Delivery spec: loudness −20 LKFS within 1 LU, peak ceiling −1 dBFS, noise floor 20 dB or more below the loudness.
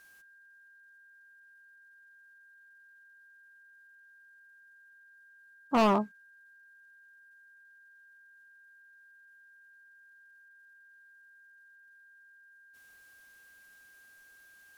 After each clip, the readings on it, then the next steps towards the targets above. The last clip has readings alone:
share of clipped samples 0.3%; peaks flattened at −20.5 dBFS; interfering tone 1,600 Hz; level of the tone −56 dBFS; integrated loudness −28.0 LKFS; sample peak −20.5 dBFS; target loudness −20.0 LKFS
→ clipped peaks rebuilt −20.5 dBFS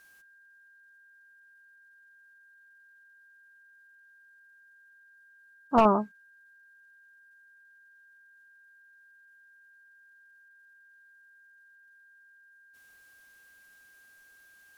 share of clipped samples 0.0%; interfering tone 1,600 Hz; level of the tone −56 dBFS
→ notch filter 1,600 Hz, Q 30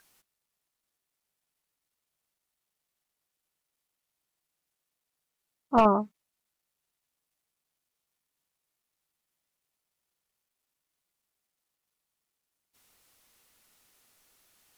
interfering tone none found; integrated loudness −24.5 LKFS; sample peak −11.5 dBFS; target loudness −20.0 LKFS
→ level +4.5 dB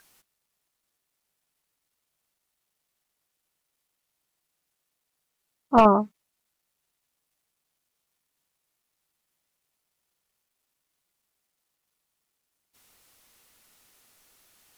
integrated loudness −20.0 LKFS; sample peak −7.0 dBFS; background noise floor −81 dBFS

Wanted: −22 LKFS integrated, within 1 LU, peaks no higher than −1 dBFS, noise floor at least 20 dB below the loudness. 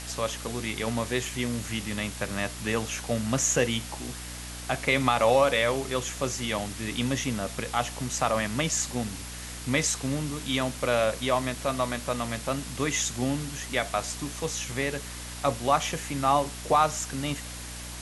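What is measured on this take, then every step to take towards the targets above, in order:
mains hum 60 Hz; hum harmonics up to 300 Hz; level of the hum −39 dBFS; background noise floor −39 dBFS; target noise floor −48 dBFS; integrated loudness −28.0 LKFS; sample peak −9.5 dBFS; target loudness −22.0 LKFS
→ mains-hum notches 60/120/180/240/300 Hz
noise reduction from a noise print 9 dB
level +6 dB

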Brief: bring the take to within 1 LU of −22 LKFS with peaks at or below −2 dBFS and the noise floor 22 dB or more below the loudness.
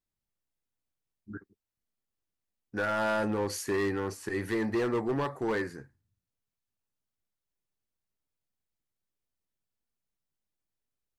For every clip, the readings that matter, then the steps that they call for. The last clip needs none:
share of clipped samples 1.4%; peaks flattened at −24.5 dBFS; integrated loudness −31.0 LKFS; sample peak −24.5 dBFS; target loudness −22.0 LKFS
→ clipped peaks rebuilt −24.5 dBFS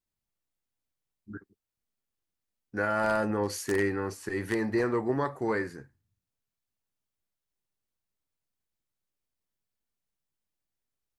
share of clipped samples 0.0%; integrated loudness −30.0 LKFS; sample peak −15.5 dBFS; target loudness −22.0 LKFS
→ level +8 dB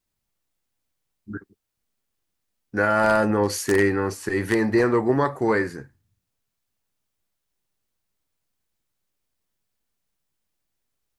integrated loudness −22.0 LKFS; sample peak −7.5 dBFS; background noise floor −80 dBFS

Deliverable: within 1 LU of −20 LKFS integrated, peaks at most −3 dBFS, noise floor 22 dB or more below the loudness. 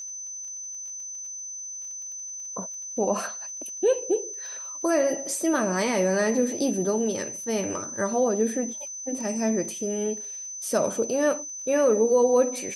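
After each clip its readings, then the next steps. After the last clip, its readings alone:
crackle rate 24 per second; interfering tone 6,100 Hz; level of the tone −34 dBFS; integrated loudness −26.5 LKFS; sample peak −11.0 dBFS; target loudness −20.0 LKFS
→ click removal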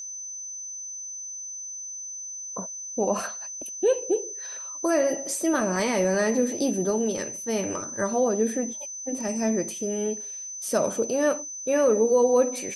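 crackle rate 0 per second; interfering tone 6,100 Hz; level of the tone −34 dBFS
→ notch filter 6,100 Hz, Q 30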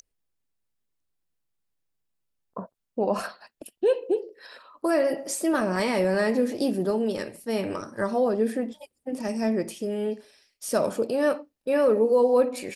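interfering tone none found; integrated loudness −25.5 LKFS; sample peak −11.0 dBFS; target loudness −20.0 LKFS
→ level +5.5 dB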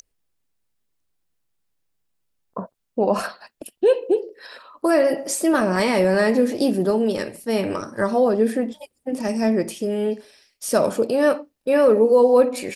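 integrated loudness −20.0 LKFS; sample peak −5.5 dBFS; background noise floor −73 dBFS

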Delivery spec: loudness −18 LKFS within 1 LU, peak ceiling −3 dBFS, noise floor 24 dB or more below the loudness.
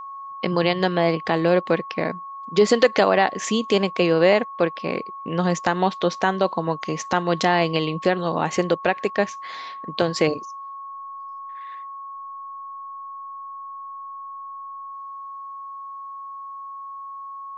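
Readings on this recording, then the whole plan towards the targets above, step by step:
interfering tone 1,100 Hz; level of the tone −33 dBFS; integrated loudness −22.0 LKFS; sample peak −3.5 dBFS; target loudness −18.0 LKFS
→ notch filter 1,100 Hz, Q 30
level +4 dB
brickwall limiter −3 dBFS

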